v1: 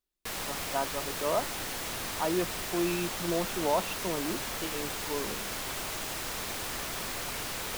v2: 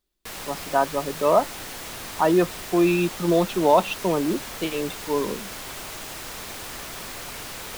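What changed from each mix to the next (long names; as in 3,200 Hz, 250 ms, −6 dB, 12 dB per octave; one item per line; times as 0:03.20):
speech +11.0 dB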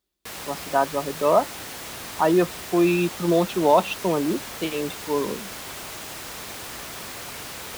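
master: add high-pass filter 53 Hz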